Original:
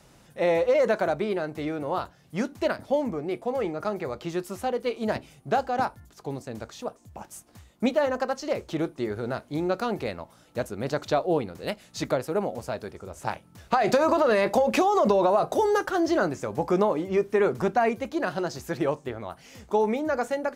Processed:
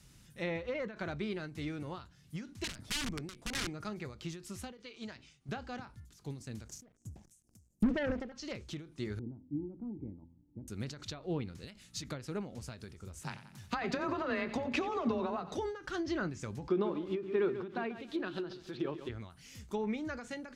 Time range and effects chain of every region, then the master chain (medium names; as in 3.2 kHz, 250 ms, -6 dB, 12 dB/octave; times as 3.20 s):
2.64–3.71 s: upward compressor, threshold -39 dBFS + integer overflow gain 23.5 dB
4.77–5.49 s: low-pass 7 kHz 24 dB/octave + bass shelf 390 Hz -10 dB
6.68–8.32 s: inverse Chebyshev band-stop 1.2–3.7 kHz + waveshaping leveller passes 3 + loudspeaker Doppler distortion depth 0.43 ms
9.19–10.68 s: cascade formant filter u + bass shelf 310 Hz +11 dB + de-hum 85.16 Hz, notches 6
13.23–15.57 s: frequency shift +25 Hz + feedback delay 90 ms, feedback 56%, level -13.5 dB
16.68–19.09 s: cabinet simulation 210–4500 Hz, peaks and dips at 360 Hz +9 dB, 2 kHz -7 dB, 3.6 kHz +7 dB + bit-crushed delay 139 ms, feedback 35%, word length 7-bit, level -11 dB
whole clip: low-pass that closes with the level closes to 2.4 kHz, closed at -18 dBFS; amplifier tone stack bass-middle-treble 6-0-2; endings held to a fixed fall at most 120 dB/s; trim +12.5 dB